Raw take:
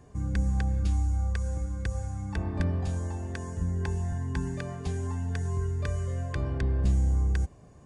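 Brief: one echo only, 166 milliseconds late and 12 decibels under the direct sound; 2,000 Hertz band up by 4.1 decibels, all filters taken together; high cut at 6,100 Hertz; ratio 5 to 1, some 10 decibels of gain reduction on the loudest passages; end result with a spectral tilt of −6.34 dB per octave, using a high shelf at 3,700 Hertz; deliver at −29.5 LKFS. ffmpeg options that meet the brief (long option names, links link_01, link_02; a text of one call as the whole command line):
ffmpeg -i in.wav -af "lowpass=6100,equalizer=frequency=2000:width_type=o:gain=3.5,highshelf=frequency=3700:gain=8,acompressor=threshold=-32dB:ratio=5,aecho=1:1:166:0.251,volume=7dB" out.wav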